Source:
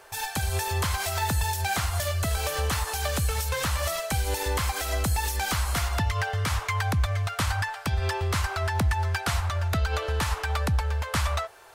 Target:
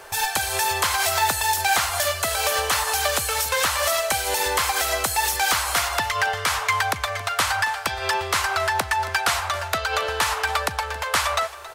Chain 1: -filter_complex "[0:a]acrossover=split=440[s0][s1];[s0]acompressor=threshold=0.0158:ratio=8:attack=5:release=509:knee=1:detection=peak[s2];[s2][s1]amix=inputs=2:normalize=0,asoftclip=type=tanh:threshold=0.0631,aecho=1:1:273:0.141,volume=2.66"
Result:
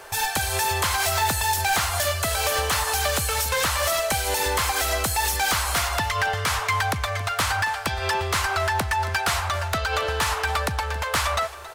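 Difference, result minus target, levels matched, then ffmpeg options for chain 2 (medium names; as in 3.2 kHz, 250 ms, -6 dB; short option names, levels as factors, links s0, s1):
saturation: distortion +18 dB; compression: peak gain reduction -8.5 dB
-filter_complex "[0:a]acrossover=split=440[s0][s1];[s0]acompressor=threshold=0.00531:ratio=8:attack=5:release=509:knee=1:detection=peak[s2];[s2][s1]amix=inputs=2:normalize=0,asoftclip=type=tanh:threshold=0.237,aecho=1:1:273:0.141,volume=2.66"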